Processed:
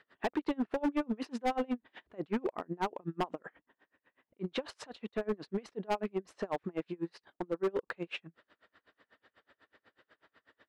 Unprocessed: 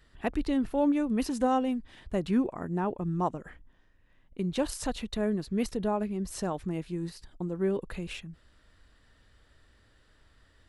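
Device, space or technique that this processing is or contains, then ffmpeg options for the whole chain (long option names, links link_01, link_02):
helicopter radio: -af "highpass=360,lowpass=2500,aeval=exprs='val(0)*pow(10,-33*(0.5-0.5*cos(2*PI*8.1*n/s))/20)':channel_layout=same,asoftclip=type=hard:threshold=-34.5dB,volume=8.5dB"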